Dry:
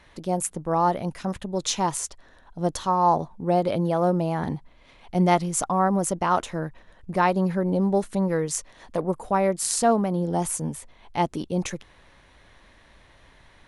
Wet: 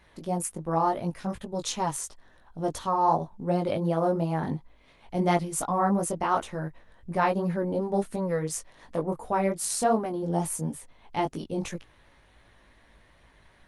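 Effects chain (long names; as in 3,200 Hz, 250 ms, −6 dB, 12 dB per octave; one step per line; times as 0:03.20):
tempo change 1×
chorus effect 2.8 Hz, delay 17.5 ms, depth 2.7 ms
Opus 32 kbit/s 48,000 Hz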